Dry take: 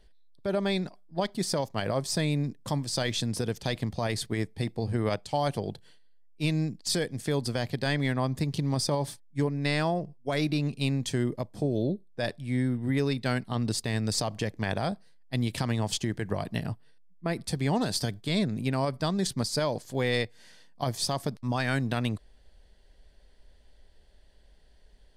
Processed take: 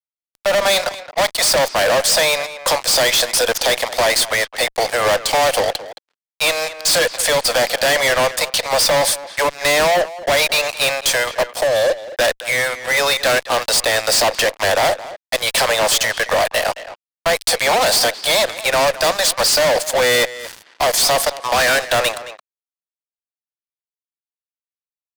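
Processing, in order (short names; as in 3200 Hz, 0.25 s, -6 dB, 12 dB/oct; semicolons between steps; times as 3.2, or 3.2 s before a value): steep high-pass 500 Hz 96 dB/oct; fuzz box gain 45 dB, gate -52 dBFS; speakerphone echo 0.22 s, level -10 dB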